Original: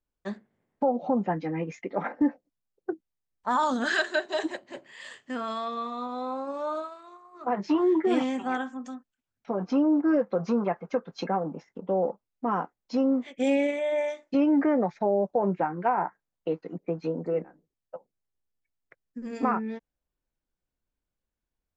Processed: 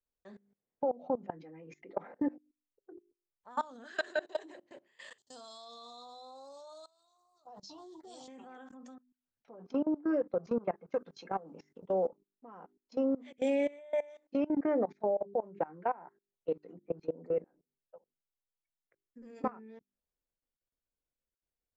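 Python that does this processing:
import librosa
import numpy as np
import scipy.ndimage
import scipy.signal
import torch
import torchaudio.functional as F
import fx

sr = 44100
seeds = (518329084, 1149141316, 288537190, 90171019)

y = fx.curve_eq(x, sr, hz=(130.0, 210.0, 380.0, 770.0, 2200.0, 4100.0), db=(0, -14, -16, -3, -23, 13), at=(5.18, 8.28))
y = fx.high_shelf(y, sr, hz=2000.0, db=10.5, at=(10.95, 12.07))
y = fx.peak_eq(y, sr, hz=490.0, db=5.5, octaves=0.94)
y = fx.hum_notches(y, sr, base_hz=50, count=8)
y = fx.level_steps(y, sr, step_db=22)
y = F.gain(torch.from_numpy(y), -6.5).numpy()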